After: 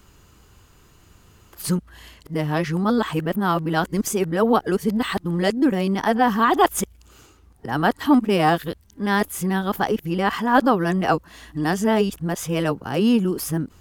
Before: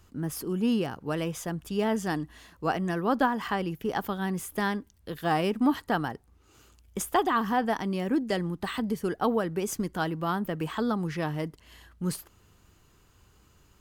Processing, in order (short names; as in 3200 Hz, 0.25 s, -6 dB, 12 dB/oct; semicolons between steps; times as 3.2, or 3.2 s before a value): whole clip reversed; gain +8 dB